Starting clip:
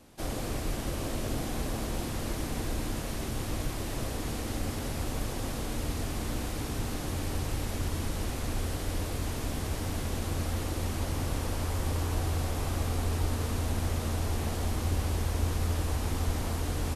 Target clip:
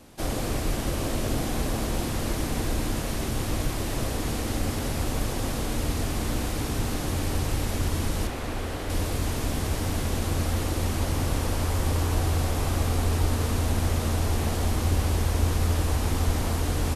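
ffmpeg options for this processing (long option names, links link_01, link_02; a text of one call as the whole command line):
ffmpeg -i in.wav -filter_complex "[0:a]asettb=1/sr,asplit=3[link_01][link_02][link_03];[link_01]atrim=end=8.274[link_04];[link_02]atrim=start=8.27:end=8.9,asetpts=PTS-STARTPTS,afade=type=in:duration=0.004:curve=qsin,afade=type=out:start_time=0.626:duration=0.004:curve=qsin,bass=frequency=250:gain=-6,treble=frequency=4000:gain=-8[link_05];[link_03]atrim=start=8.896[link_06];[link_04][link_05]acrossfade=duration=0.004:curve1=hsin:curve2=qsin[link_07];[link_07][link_06]acrossfade=duration=0.004:curve1=qsin:curve2=hsin,volume=5.5dB" out.wav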